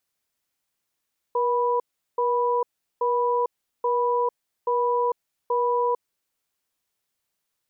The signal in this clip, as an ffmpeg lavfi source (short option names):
-f lavfi -i "aevalsrc='0.075*(sin(2*PI*480*t)+sin(2*PI*984*t))*clip(min(mod(t,0.83),0.45-mod(t,0.83))/0.005,0,1)':d=4.66:s=44100"